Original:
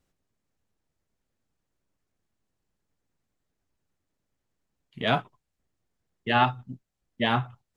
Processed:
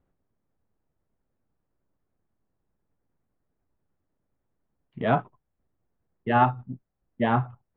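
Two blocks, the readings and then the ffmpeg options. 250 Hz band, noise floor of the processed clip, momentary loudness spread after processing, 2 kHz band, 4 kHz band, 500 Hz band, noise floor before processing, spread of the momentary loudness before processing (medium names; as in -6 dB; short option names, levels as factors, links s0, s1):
+3.0 dB, -80 dBFS, 18 LU, -3.0 dB, -12.5 dB, +3.0 dB, -82 dBFS, 16 LU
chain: -af "lowpass=1300,volume=1.41"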